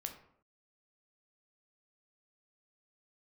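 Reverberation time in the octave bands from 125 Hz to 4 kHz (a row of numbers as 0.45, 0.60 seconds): 0.65, 0.70, 0.65, 0.65, 0.50, 0.35 seconds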